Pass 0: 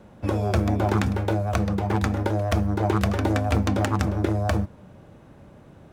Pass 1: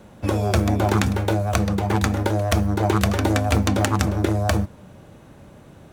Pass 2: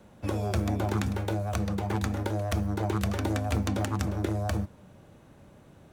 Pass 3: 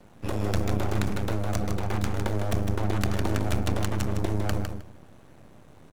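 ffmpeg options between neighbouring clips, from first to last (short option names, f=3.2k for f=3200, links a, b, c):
-af "highshelf=f=3.4k:g=8.5,bandreject=f=5.1k:w=24,volume=2.5dB"
-filter_complex "[0:a]acrossover=split=350[a][b];[b]acompressor=threshold=-22dB:ratio=6[c];[a][c]amix=inputs=2:normalize=0,volume=-8dB"
-filter_complex "[0:a]aeval=exprs='max(val(0),0)':c=same,asplit=2[a][b];[b]aecho=0:1:156|312|468:0.473|0.071|0.0106[c];[a][c]amix=inputs=2:normalize=0,volume=4.5dB"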